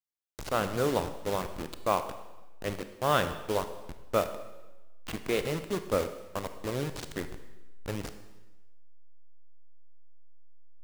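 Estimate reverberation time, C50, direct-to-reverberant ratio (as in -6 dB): 1.1 s, 10.5 dB, 9.0 dB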